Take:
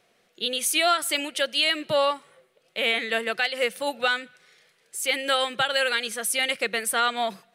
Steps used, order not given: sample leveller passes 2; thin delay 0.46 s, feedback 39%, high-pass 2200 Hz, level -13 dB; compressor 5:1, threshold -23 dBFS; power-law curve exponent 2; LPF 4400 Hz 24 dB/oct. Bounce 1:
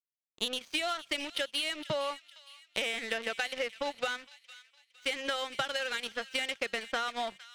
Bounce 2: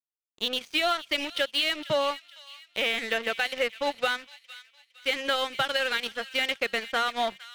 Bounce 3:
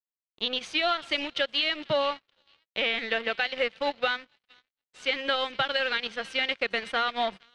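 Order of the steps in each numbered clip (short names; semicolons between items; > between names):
sample leveller > LPF > compressor > power-law curve > thin delay; LPF > compressor > sample leveller > power-law curve > thin delay; compressor > thin delay > sample leveller > power-law curve > LPF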